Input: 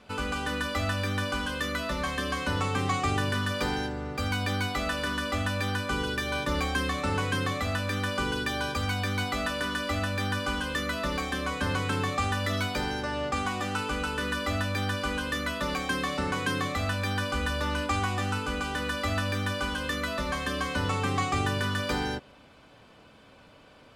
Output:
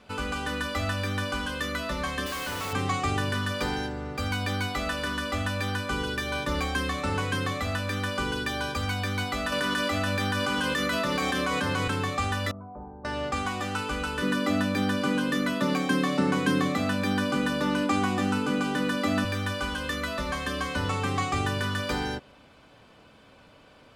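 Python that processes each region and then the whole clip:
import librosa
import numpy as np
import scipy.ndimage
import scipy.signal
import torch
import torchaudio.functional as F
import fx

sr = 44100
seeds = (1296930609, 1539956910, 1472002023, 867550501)

y = fx.chain(x, sr, fx.low_shelf(hz=260.0, db=-9.5),
    fx.quant_companded(bits=2),
    fx.clip_hard(threshold_db=-30.5), at=(2.26, 2.73))
y = fx.chain(y, sr, fx.highpass(hz=96.0, slope=24),
    fx.env_flatten(amount_pct=100), at=(9.52, 11.88))
y = fx.chain(y, sr, fx.ellip_lowpass(hz=1100.0, order=4, stop_db=80),
    fx.comb_fb(f0_hz=67.0, decay_s=0.47, harmonics='odd', damping=0.0, mix_pct=80), at=(12.51, 13.05))
y = fx.chain(y, sr, fx.highpass(hz=120.0, slope=24),
    fx.peak_eq(hz=230.0, db=10.0, octaves=1.9), at=(14.22, 19.25))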